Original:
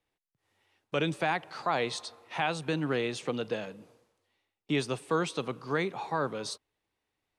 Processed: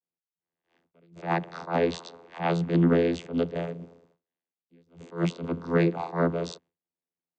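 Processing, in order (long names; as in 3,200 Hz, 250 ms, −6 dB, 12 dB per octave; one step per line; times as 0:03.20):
noise gate with hold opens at −60 dBFS
channel vocoder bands 16, saw 84.9 Hz
level that may rise only so fast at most 190 dB per second
level +9 dB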